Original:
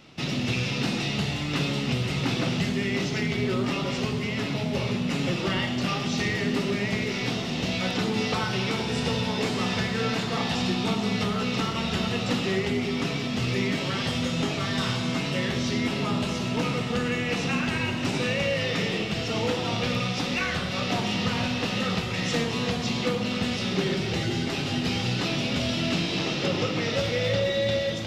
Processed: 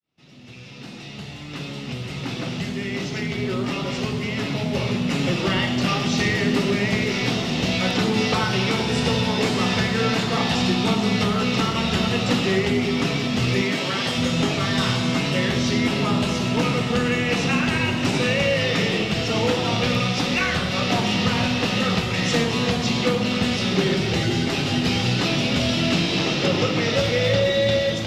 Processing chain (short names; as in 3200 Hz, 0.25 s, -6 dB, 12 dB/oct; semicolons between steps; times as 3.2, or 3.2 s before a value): opening faded in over 5.94 s; 13.61–14.18 HPF 250 Hz 6 dB/oct; gain +5.5 dB